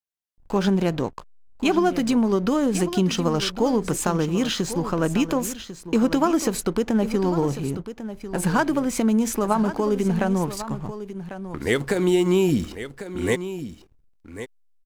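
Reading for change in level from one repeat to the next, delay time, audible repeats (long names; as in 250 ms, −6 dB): repeats not evenly spaced, 1,097 ms, 1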